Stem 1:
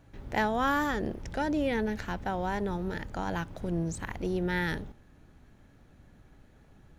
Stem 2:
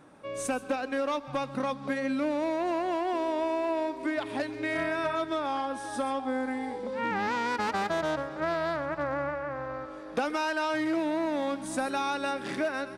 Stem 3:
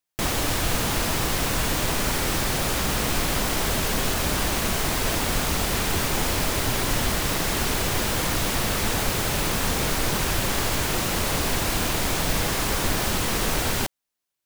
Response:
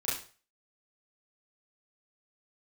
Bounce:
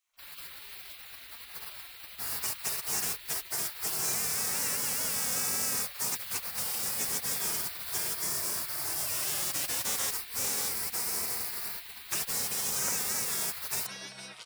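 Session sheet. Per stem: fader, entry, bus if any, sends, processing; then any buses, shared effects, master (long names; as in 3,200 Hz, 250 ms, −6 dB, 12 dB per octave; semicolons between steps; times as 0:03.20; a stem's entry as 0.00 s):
−10.5 dB, 0.00 s, no send, no processing
+2.5 dB, 1.95 s, no send, no processing
−14.5 dB, 0.00 s, no send, high shelf with overshoot 4,600 Hz +11.5 dB, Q 3; automatic gain control gain up to 5 dB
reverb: not used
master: high-pass filter 150 Hz 12 dB per octave; mains-hum notches 60/120/180/240/300 Hz; gate on every frequency bin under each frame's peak −20 dB weak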